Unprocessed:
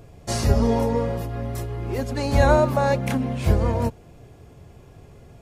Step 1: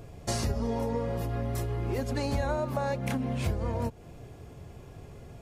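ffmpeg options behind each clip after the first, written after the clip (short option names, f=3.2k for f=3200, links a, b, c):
-af "acompressor=threshold=-27dB:ratio=6"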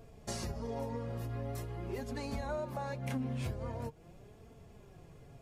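-af "flanger=delay=4.4:depth=3.6:regen=42:speed=0.44:shape=sinusoidal,volume=-4dB"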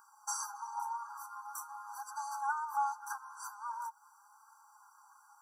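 -af "asuperstop=centerf=2900:order=20:qfactor=0.92,afftfilt=real='re*eq(mod(floor(b*sr/1024/800),2),1)':imag='im*eq(mod(floor(b*sr/1024/800),2),1)':win_size=1024:overlap=0.75,volume=10.5dB"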